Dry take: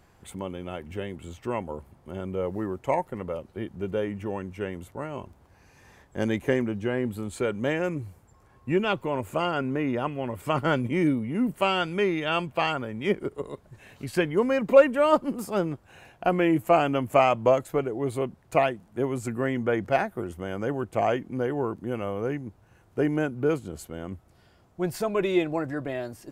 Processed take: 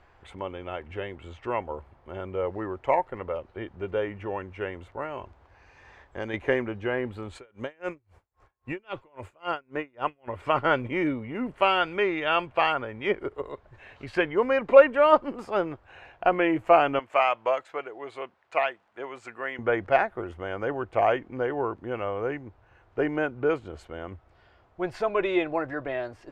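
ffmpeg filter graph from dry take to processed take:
-filter_complex "[0:a]asettb=1/sr,asplit=3[s0][s1][s2];[s0]atrim=end=5.084[s3];[s1]atrim=start=5.08:end=6.34,asetpts=PTS-STARTPTS,afade=t=in:d=0.004:c=qsin,afade=t=out:st=1.256:d=0.004:c=qsin,highshelf=f=5500:g=7,acompressor=threshold=0.0316:ratio=2:attack=3.2:release=140:knee=1:detection=peak,lowpass=8600[s4];[s2]atrim=start=6.336[s5];[s3][s4]acrossfade=d=0.004:c1=hsin:c2=qsin[s6];[s6][s5]acrossfade=d=0.004:c1=qsin:c2=hsin,asettb=1/sr,asplit=3[s7][s8][s9];[s7]atrim=end=7.354[s10];[s8]atrim=start=7.35:end=10.28,asetpts=PTS-STARTPTS,afade=t=in:d=0.004:c=qsin,afade=t=out:st=2.926:d=0.004:c=qsin,highshelf=f=5300:g=10.5,aeval=exprs='val(0)*pow(10,-36*(0.5-0.5*cos(2*PI*3.7*n/s))/20)':c=same[s11];[s9]atrim=start=10.276[s12];[s10][s11]acrossfade=d=0.004:c1=hsin:c2=qsin[s13];[s13][s12]acrossfade=d=0.004:c1=qsin:c2=hsin,asettb=1/sr,asplit=3[s14][s15][s16];[s14]atrim=end=16.994[s17];[s15]atrim=start=16.99:end=19.59,asetpts=PTS-STARTPTS,afade=t=in:d=0.004:c=qsin,afade=t=out:st=2.596:d=0.004:c=qsin,highpass=f=1200:p=1,equalizer=f=11000:t=o:w=0.29:g=-8.5[s18];[s16]atrim=start=19.586[s19];[s17][s18]acrossfade=d=0.004:c1=hsin:c2=qsin[s20];[s20][s19]acrossfade=d=0.004:c1=qsin:c2=hsin,lowpass=2700,equalizer=f=180:w=0.8:g=-14.5,volume=1.68"

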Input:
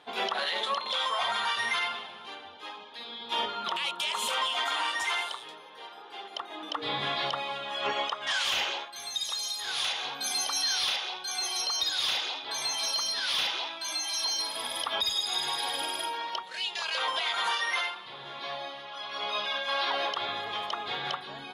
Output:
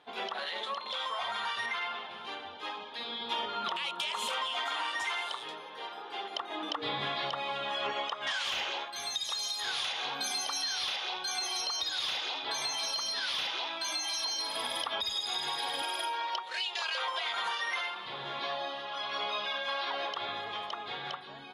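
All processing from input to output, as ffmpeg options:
-filter_complex "[0:a]asettb=1/sr,asplit=3[s0][s1][s2];[s0]atrim=end=1.664[s3];[s1]atrim=start=1.66:end=2.11,asetpts=PTS-STARTPTS,afade=t=in:d=0.004:c=qsin,afade=t=out:st=0.446:d=0.004:c=qsin,highpass=f=210:p=1,aemphasis=mode=reproduction:type=50kf[s4];[s2]atrim=start=2.106[s5];[s3][s4]acrossfade=d=0.004:c1=hsin:c2=qsin[s6];[s6][s5]acrossfade=d=0.004:c1=qsin:c2=hsin,asettb=1/sr,asplit=3[s7][s8][s9];[s7]atrim=end=15.824[s10];[s8]atrim=start=15.82:end=17.24,asetpts=PTS-STARTPTS,afade=t=in:d=0.004:c=qsin,afade=t=out:st=1.416:d=0.004:c=qsin,highpass=410,aecho=1:1:5.6:0.3,atrim=end_sample=62622[s11];[s9]atrim=start=17.236[s12];[s10][s11]acrossfade=d=0.004:c1=hsin:c2=qsin[s13];[s13][s12]acrossfade=d=0.004:c1=qsin:c2=hsin,asettb=1/sr,asplit=3[s14][s15][s16];[s14]atrim=end=18.464[s17];[s15]atrim=start=18.46:end=18.91,asetpts=PTS-STARTPTS,afade=t=in:d=0.004:c=qsin,afade=t=out:st=0.446:d=0.004:c=qsin,equalizer=f=120:w=2.7:g=-7.5,bandreject=f=2200:w=10[s18];[s16]atrim=start=18.906[s19];[s17][s18]acrossfade=d=0.004:c1=hsin:c2=qsin[s20];[s20][s19]acrossfade=d=0.004:c1=qsin:c2=hsin,dynaudnorm=f=180:g=21:m=2.82,highshelf=f=7600:g=-8.5,acompressor=threshold=0.0501:ratio=6,volume=0.562"

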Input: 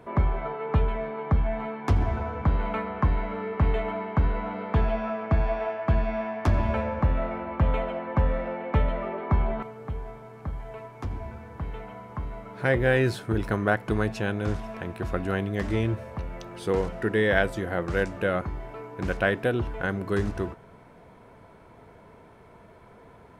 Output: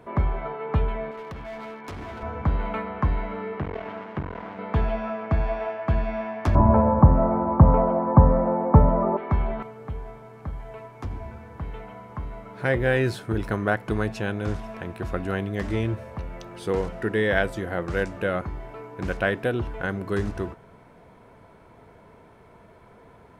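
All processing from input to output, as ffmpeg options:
-filter_complex "[0:a]asettb=1/sr,asplit=3[s0][s1][s2];[s0]atrim=end=1.114[s3];[s1]atrim=start=1.11:end=2.23,asetpts=PTS-STARTPTS,afade=t=in:d=0.004:c=qsin,afade=t=out:st=1.116:d=0.004:c=qsin,highpass=f=330:p=1,equalizer=f=780:t=o:w=0.37:g=-6.5,volume=44.7,asoftclip=hard,volume=0.0224[s4];[s2]atrim=start=2.226[s5];[s3][s4]acrossfade=d=0.004:c1=hsin:c2=qsin[s6];[s6][s5]acrossfade=d=0.004:c1=qsin:c2=hsin,asettb=1/sr,asplit=3[s7][s8][s9];[s7]atrim=end=3.594[s10];[s8]atrim=start=3.59:end=4.59,asetpts=PTS-STARTPTS,afade=t=in:d=0.004:c=qsin,afade=t=out:st=0.996:d=0.004:c=qsin,aeval=exprs='max(val(0),0)':c=same,acrusher=bits=6:dc=4:mix=0:aa=0.000001,highpass=100,lowpass=2800[s11];[s9]atrim=start=4.586[s12];[s10][s11]acrossfade=d=0.004:c1=hsin:c2=qsin[s13];[s13][s12]acrossfade=d=0.004:c1=qsin:c2=hsin,asettb=1/sr,asplit=3[s14][s15][s16];[s14]atrim=end=6.554[s17];[s15]atrim=start=6.55:end=9.17,asetpts=PTS-STARTPTS,afade=t=in:d=0.004:c=qsin,afade=t=out:st=2.616:d=0.004:c=qsin,lowpass=f=1000:t=q:w=2.8,equalizer=f=160:w=0.39:g=12[s18];[s16]atrim=start=9.166[s19];[s17][s18]acrossfade=d=0.004:c1=hsin:c2=qsin[s20];[s20][s19]acrossfade=d=0.004:c1=qsin:c2=hsin"

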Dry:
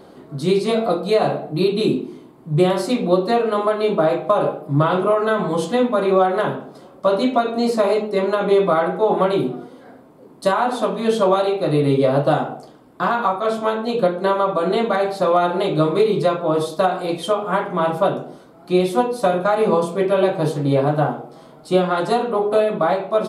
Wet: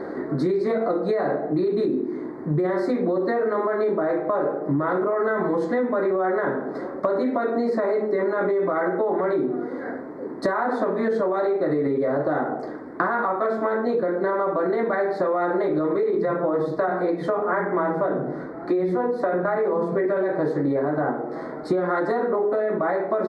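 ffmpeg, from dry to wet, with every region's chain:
-filter_complex "[0:a]asettb=1/sr,asplit=3[s0][s1][s2];[s0]atrim=end=16.034[s3];[s1]atrim=start=16.03:end=20.06,asetpts=PTS-STARTPTS,afade=t=in:d=0.004:c=qsin,afade=t=out:st=4.026:d=0.004:c=qsin,bass=f=250:g=4,treble=f=4000:g=-5,acrossover=split=230[s4][s5];[s4]adelay=90[s6];[s6][s5]amix=inputs=2:normalize=0,atrim=end_sample=177723[s7];[s2]atrim=start=20.056[s8];[s3][s7]acrossfade=d=0.004:c1=hsin:c2=qsin[s9];[s9][s8]acrossfade=d=0.004:c1=qsin:c2=hsin,firequalizer=gain_entry='entry(140,0);entry(310,12);entry(740,6);entry(1200,7);entry(1900,15);entry(2800,-20);entry(4100,-4);entry(9500,-16)':delay=0.05:min_phase=1,alimiter=limit=0.531:level=0:latency=1:release=30,acompressor=threshold=0.0631:ratio=6,volume=1.41"

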